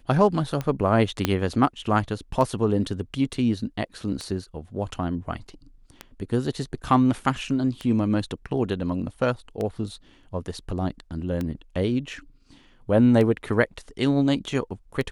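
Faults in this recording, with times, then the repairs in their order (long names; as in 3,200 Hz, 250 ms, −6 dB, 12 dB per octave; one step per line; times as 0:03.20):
scratch tick 33 1/3 rpm −16 dBFS
0:01.25: click −6 dBFS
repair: click removal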